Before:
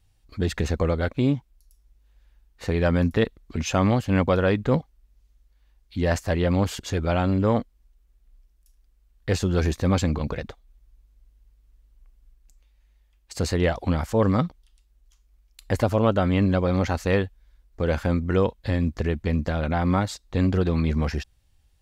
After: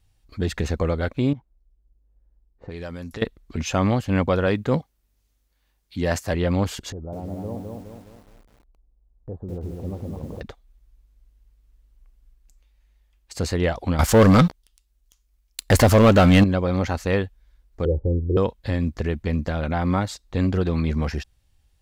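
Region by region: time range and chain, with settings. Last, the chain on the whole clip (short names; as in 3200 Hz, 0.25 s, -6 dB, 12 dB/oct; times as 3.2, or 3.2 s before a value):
1.33–3.22 low-pass opened by the level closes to 440 Hz, open at -18 dBFS + tone controls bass -3 dB, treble +10 dB + compressor 4:1, threshold -32 dBFS
4.46–6.34 HPF 81 Hz + high shelf 6200 Hz +6 dB
6.92–10.41 inverse Chebyshev low-pass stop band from 2200 Hz, stop band 50 dB + compressor 2:1, threshold -38 dBFS + lo-fi delay 0.207 s, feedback 55%, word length 9-bit, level -3 dB
13.99–16.44 high shelf 3300 Hz +7.5 dB + sample leveller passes 3
17.85–18.37 steep low-pass 510 Hz + comb 2.3 ms, depth 97%
whole clip: dry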